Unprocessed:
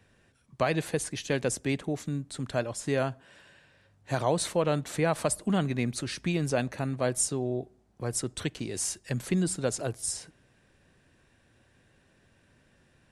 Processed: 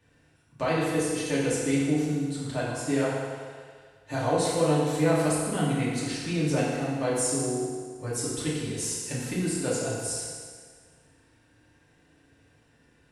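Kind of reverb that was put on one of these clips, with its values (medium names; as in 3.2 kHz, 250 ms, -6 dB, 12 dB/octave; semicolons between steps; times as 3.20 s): FDN reverb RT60 1.8 s, low-frequency decay 0.75×, high-frequency decay 0.85×, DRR -8 dB; trim -6.5 dB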